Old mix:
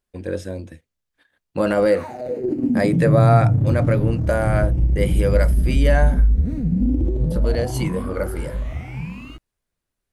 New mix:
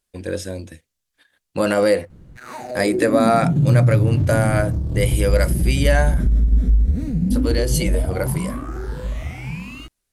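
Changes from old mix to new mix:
background: entry +0.50 s; master: add bell 9500 Hz +10 dB 3 oct

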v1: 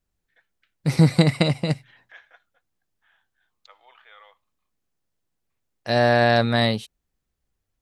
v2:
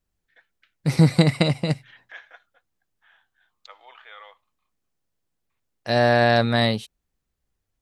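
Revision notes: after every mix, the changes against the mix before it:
first voice +5.5 dB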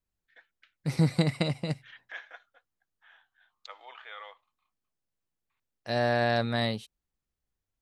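second voice -8.5 dB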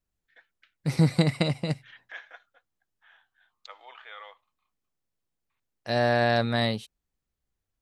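second voice +3.0 dB

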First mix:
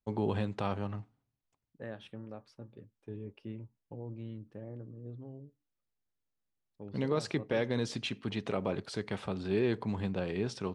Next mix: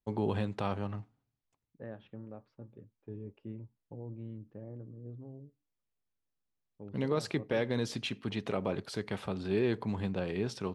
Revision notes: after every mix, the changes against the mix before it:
first voice: remove steep low-pass 10000 Hz 36 dB/oct; second voice: add tape spacing loss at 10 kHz 35 dB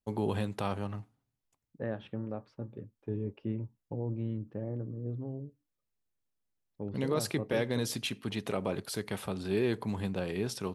second voice +8.5 dB; master: remove air absorption 86 m

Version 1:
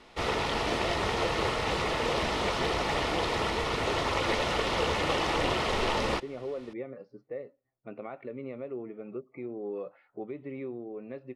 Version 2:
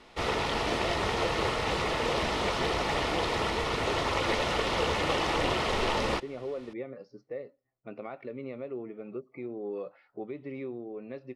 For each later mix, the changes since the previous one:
speech: add bell 5700 Hz +13.5 dB 0.9 oct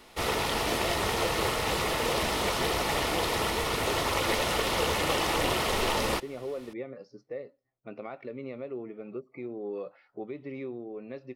master: remove air absorption 85 m

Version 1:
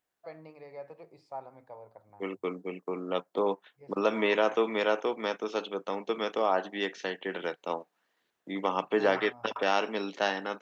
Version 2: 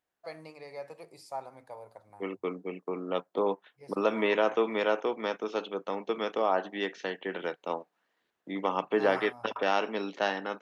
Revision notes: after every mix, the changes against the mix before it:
first voice: remove tape spacing loss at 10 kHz 35 dB; master: add high shelf 4600 Hz -6.5 dB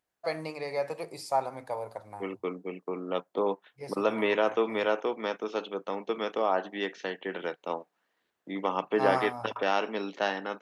first voice +10.5 dB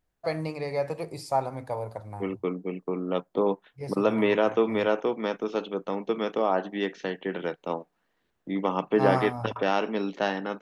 master: remove HPF 500 Hz 6 dB/oct

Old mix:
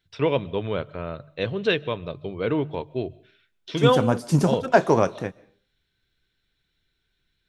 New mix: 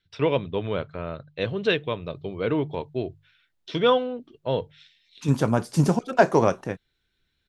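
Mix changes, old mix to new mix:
second voice: entry +1.45 s; reverb: off

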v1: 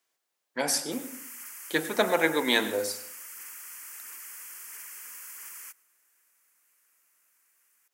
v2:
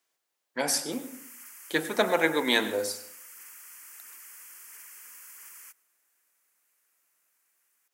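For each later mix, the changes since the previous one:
background -4.5 dB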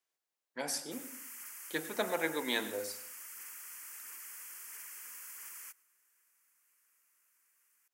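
speech -9.5 dB

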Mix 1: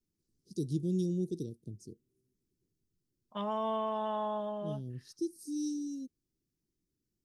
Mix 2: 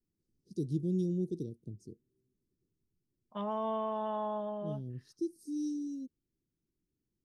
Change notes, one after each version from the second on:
master: add high shelf 2200 Hz -9 dB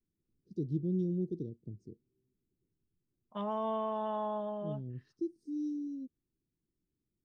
first voice: add tape spacing loss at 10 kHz 25 dB

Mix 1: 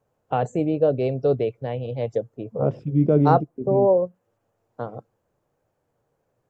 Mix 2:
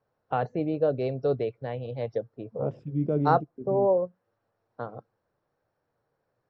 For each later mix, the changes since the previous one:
first voice: add rippled Chebyshev low-pass 5700 Hz, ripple 6 dB; second voice -8.5 dB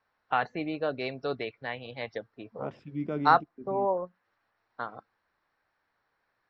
master: add graphic EQ 125/500/1000/2000/4000 Hz -12/-9/+4/+10/+7 dB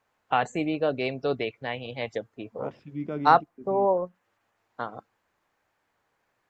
first voice: remove rippled Chebyshev low-pass 5700 Hz, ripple 6 dB

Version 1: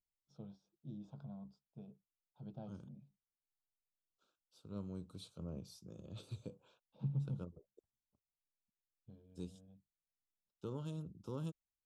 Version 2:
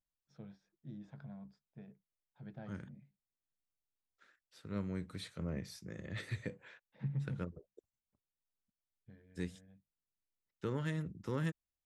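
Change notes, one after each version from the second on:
second voice +6.0 dB; master: remove Butterworth band-stop 1900 Hz, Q 1.1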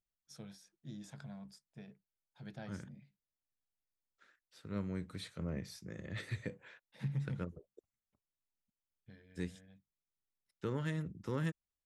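first voice: remove tape spacing loss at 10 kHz 36 dB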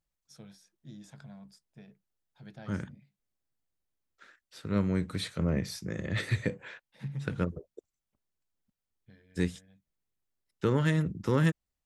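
second voice +11.0 dB

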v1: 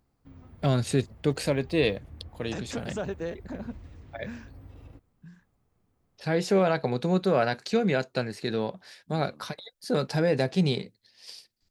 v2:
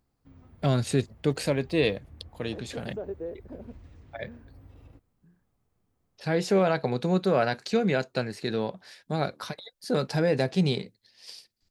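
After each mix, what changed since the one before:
second voice: add band-pass 420 Hz, Q 1.8; background -3.5 dB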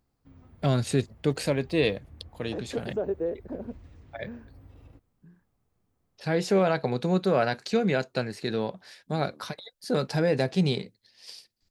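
second voice +6.5 dB

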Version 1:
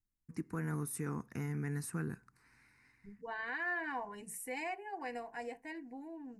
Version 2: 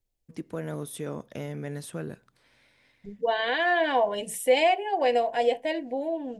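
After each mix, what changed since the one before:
second voice +9.0 dB; master: remove fixed phaser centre 1400 Hz, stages 4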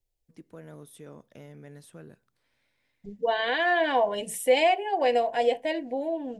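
first voice -11.5 dB

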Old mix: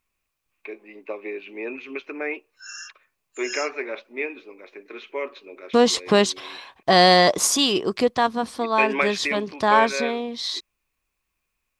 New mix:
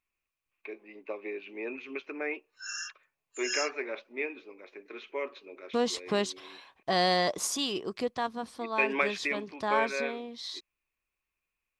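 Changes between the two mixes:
first voice -5.5 dB; second voice -11.5 dB

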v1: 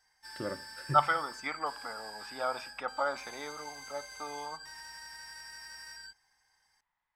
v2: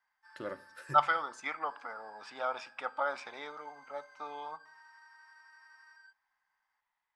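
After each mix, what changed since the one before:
background: add band-pass 1200 Hz, Q 3.3; master: add low shelf 260 Hz -12 dB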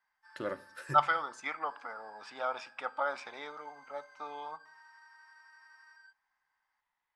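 first voice +3.5 dB

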